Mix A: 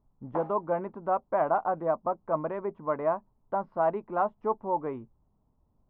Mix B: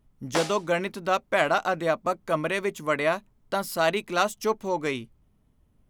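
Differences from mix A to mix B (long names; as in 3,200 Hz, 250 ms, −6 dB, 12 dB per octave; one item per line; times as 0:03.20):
speech −3.5 dB
master: remove transistor ladder low-pass 1,100 Hz, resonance 50%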